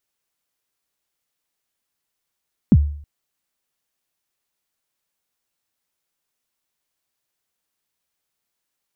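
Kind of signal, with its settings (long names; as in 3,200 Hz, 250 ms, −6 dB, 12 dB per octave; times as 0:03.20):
synth kick length 0.32 s, from 270 Hz, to 73 Hz, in 47 ms, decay 0.56 s, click off, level −5 dB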